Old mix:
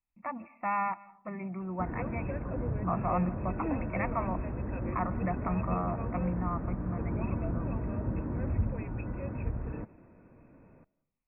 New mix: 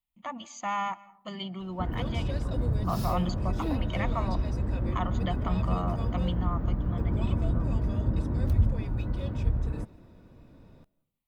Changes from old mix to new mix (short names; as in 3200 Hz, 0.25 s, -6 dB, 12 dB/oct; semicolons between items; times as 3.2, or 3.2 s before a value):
background: add low shelf 110 Hz +11 dB; master: remove brick-wall FIR low-pass 2700 Hz